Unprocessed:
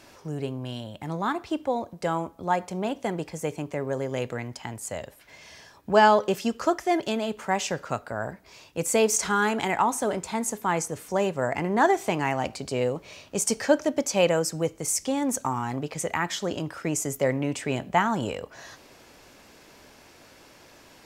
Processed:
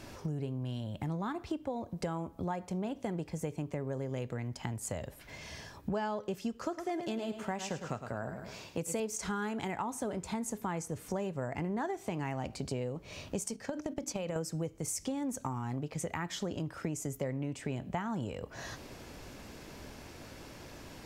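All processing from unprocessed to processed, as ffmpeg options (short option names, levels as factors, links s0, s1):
-filter_complex "[0:a]asettb=1/sr,asplit=3[s0][s1][s2];[s0]atrim=end=6.594[s3];[s1]atrim=start=6.59:end=9,asetpts=PTS-STARTPTS,afade=t=in:d=0.004:c=qsin,afade=t=out:st=2.406:d=0.004:c=qsin,highpass=f=130:p=1,aecho=1:1:106|212|318|424:0.316|0.126|0.0506|0.0202,atrim=end_sample=106281[s4];[s2]atrim=start=8.996[s5];[s3][s4]acrossfade=d=0.004:c1=hsin:c2=qsin[s6];[s6][s5]acrossfade=d=0.004:c1=qsin:c2=hsin,asettb=1/sr,asplit=3[s7][s8][s9];[s7]atrim=end=13.484[s10];[s8]atrim=start=13.48:end=14.36,asetpts=PTS-STARTPTS,afade=t=in:d=0.004:c=qsin,afade=t=out:st=0.876:d=0.004:c=qsin,bandreject=f=50:t=h:w=6,bandreject=f=100:t=h:w=6,bandreject=f=150:t=h:w=6,bandreject=f=200:t=h:w=6,bandreject=f=250:t=h:w=6,bandreject=f=300:t=h:w=6,bandreject=f=350:t=h:w=6,agate=range=0.224:threshold=0.0282:ratio=16:release=100:detection=peak,acompressor=threshold=0.0447:ratio=10:attack=3.2:release=140:knee=1:detection=peak[s11];[s9]atrim=start=14.356[s12];[s10][s11]acrossfade=d=0.004:c1=hsin:c2=qsin[s13];[s13][s12]acrossfade=d=0.004:c1=qsin:c2=hsin,lowshelf=f=260:g=12,acompressor=threshold=0.02:ratio=6"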